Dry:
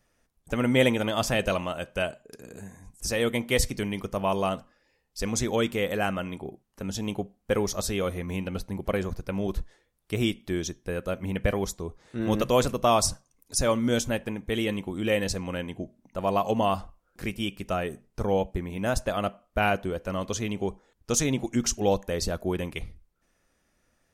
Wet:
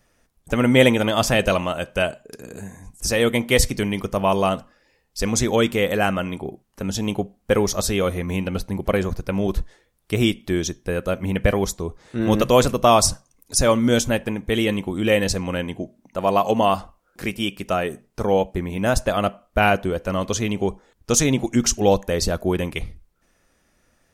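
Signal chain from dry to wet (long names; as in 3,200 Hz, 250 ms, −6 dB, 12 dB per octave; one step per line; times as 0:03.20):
0:15.77–0:18.57: low-shelf EQ 110 Hz −9 dB
level +7 dB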